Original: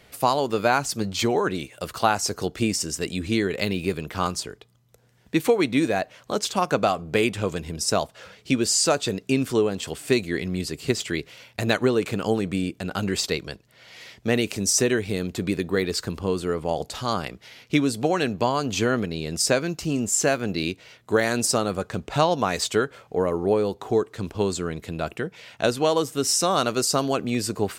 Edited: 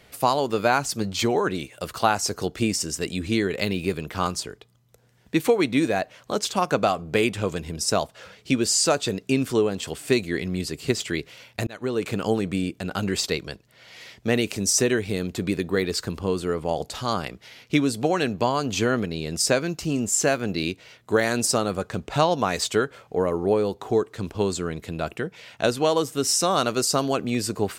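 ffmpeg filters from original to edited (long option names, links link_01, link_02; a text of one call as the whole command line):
ffmpeg -i in.wav -filter_complex "[0:a]asplit=2[link_01][link_02];[link_01]atrim=end=11.67,asetpts=PTS-STARTPTS,afade=type=out:start_time=11.666:duration=0.004:curve=hsin[link_03];[link_02]atrim=start=11.67,asetpts=PTS-STARTPTS,afade=type=in:duration=0.44[link_04];[link_03][link_04]concat=n=2:v=0:a=1" out.wav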